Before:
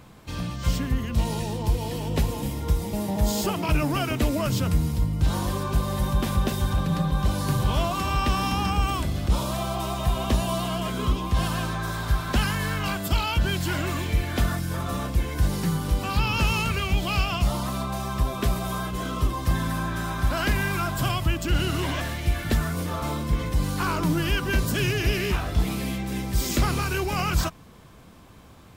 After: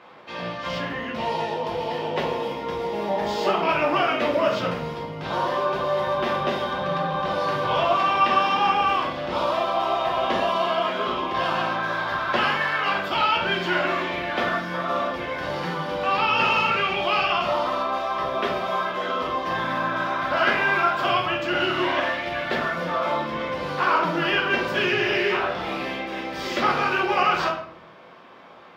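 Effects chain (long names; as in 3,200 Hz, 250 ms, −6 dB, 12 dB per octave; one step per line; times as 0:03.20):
high-pass filter 560 Hz 12 dB per octave
high-frequency loss of the air 290 metres
notch filter 4,100 Hz, Q 23
convolution reverb RT60 0.60 s, pre-delay 5 ms, DRR −2 dB
level +6.5 dB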